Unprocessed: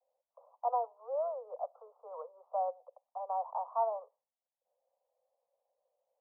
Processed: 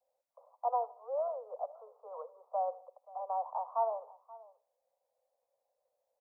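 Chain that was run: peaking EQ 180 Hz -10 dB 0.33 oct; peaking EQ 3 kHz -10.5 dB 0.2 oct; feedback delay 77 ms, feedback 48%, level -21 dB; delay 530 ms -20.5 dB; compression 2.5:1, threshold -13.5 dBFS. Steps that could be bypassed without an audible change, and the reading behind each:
peaking EQ 180 Hz: input has nothing below 400 Hz; peaking EQ 3 kHz: input has nothing above 1.2 kHz; compression, threshold -13.5 dBFS: peak at its input -21.0 dBFS

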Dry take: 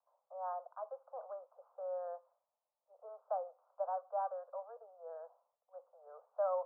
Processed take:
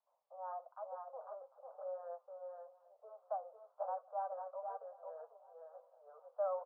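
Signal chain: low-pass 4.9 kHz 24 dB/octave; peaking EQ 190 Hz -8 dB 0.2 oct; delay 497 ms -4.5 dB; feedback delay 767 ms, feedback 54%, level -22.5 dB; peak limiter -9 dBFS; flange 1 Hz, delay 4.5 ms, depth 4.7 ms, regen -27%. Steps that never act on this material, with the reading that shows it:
low-pass 4.9 kHz: input has nothing above 1.4 kHz; peaking EQ 190 Hz: input has nothing below 430 Hz; peak limiter -9 dBFS: peak at its input -25.0 dBFS

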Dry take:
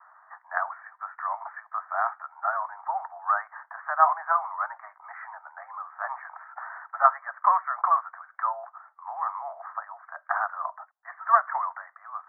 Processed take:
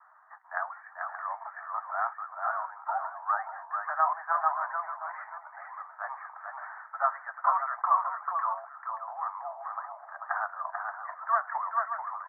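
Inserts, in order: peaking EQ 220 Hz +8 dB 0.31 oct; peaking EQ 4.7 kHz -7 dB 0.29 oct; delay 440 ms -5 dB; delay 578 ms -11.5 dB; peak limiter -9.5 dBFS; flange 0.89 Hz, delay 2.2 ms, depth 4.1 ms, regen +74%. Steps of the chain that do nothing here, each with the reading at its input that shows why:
peaking EQ 220 Hz: input has nothing below 540 Hz; peaking EQ 4.7 kHz: input has nothing above 2 kHz

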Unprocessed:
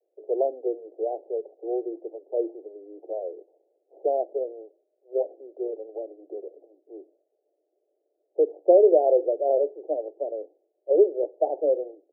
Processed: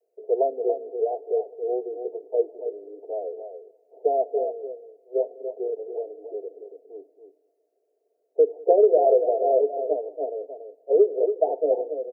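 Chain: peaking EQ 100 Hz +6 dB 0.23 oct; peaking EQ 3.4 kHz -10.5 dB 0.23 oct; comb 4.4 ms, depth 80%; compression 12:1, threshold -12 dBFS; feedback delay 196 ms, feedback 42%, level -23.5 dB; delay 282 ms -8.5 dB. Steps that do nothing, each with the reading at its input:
peaking EQ 100 Hz: input has nothing below 270 Hz; peaking EQ 3.4 kHz: input has nothing above 850 Hz

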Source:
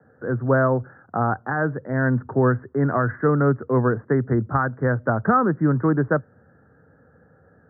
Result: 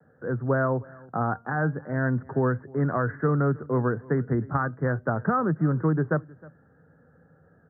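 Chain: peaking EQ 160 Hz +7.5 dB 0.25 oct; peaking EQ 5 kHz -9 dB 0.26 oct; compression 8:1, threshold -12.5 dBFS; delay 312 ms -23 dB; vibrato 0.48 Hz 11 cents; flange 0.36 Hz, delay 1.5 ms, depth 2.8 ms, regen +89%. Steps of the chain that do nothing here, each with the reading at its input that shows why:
peaking EQ 5 kHz: input has nothing above 1.8 kHz

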